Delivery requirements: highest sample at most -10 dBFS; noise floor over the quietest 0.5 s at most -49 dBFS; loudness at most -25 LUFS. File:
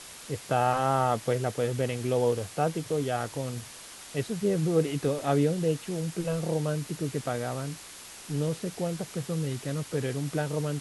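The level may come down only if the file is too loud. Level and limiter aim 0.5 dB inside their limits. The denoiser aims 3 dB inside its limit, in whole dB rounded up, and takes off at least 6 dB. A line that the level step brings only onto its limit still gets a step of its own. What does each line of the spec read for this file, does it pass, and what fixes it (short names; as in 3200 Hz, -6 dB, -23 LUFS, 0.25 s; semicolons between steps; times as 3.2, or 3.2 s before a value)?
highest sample -11.0 dBFS: OK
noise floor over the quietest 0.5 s -46 dBFS: fail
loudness -29.5 LUFS: OK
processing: denoiser 6 dB, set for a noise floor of -46 dBFS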